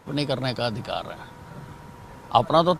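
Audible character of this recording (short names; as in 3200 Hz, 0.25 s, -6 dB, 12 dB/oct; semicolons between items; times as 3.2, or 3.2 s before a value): noise floor -45 dBFS; spectral tilt -4.5 dB/oct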